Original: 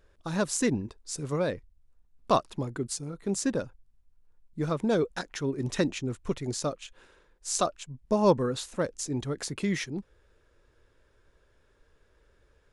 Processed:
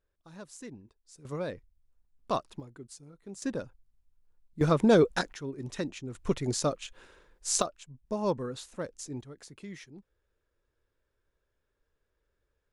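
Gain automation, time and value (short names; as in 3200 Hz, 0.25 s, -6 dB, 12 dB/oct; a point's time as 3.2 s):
-18.5 dB
from 1.25 s -6.5 dB
from 2.6 s -14.5 dB
from 3.42 s -5 dB
from 4.61 s +5 dB
from 5.33 s -7.5 dB
from 6.15 s +2 dB
from 7.62 s -7.5 dB
from 9.21 s -15 dB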